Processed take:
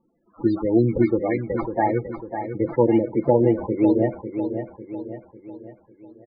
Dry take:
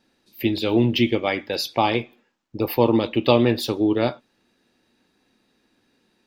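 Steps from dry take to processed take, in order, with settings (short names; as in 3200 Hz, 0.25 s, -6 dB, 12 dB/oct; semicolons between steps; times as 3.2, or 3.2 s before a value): decimation with a swept rate 14×, swing 60% 3.5 Hz; loudest bins only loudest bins 16; comb 6 ms, depth 35%; on a send: feedback echo 0.549 s, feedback 47%, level -8.5 dB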